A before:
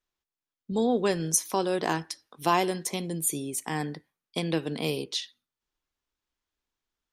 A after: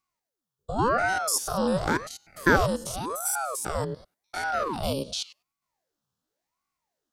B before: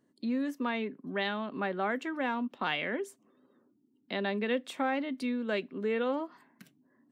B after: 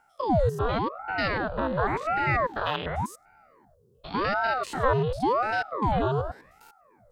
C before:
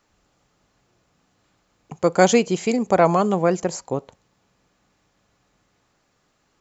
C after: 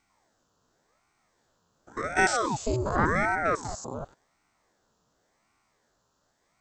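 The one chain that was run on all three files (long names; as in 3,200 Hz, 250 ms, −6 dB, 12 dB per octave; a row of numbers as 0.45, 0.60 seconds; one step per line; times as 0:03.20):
spectrum averaged block by block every 100 ms
phaser with its sweep stopped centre 570 Hz, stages 6
ring modulator whose carrier an LFO sweeps 630 Hz, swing 80%, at 0.9 Hz
loudness normalisation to −27 LKFS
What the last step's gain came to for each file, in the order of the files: +9.0, +14.0, +2.0 decibels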